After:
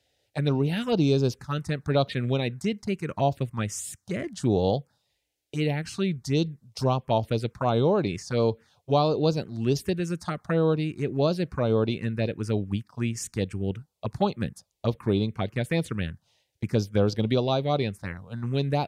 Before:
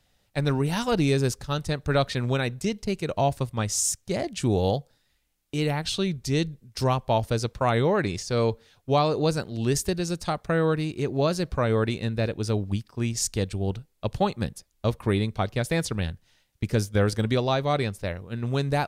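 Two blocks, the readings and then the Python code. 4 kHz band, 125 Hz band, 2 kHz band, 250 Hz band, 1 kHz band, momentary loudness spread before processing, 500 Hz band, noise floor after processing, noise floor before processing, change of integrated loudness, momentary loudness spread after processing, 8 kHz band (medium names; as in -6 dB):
-3.0 dB, -1.0 dB, -4.0 dB, +0.5 dB, -2.5 dB, 7 LU, 0.0 dB, -76 dBFS, -69 dBFS, -1.0 dB, 9 LU, -9.0 dB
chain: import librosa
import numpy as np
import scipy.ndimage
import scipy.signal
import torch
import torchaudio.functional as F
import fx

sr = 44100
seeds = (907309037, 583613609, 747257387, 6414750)

y = fx.env_phaser(x, sr, low_hz=190.0, high_hz=1900.0, full_db=-19.0)
y = scipy.signal.sosfilt(scipy.signal.butter(2, 110.0, 'highpass', fs=sr, output='sos'), y)
y = fx.high_shelf(y, sr, hz=7800.0, db=-10.0)
y = y * librosa.db_to_amplitude(1.5)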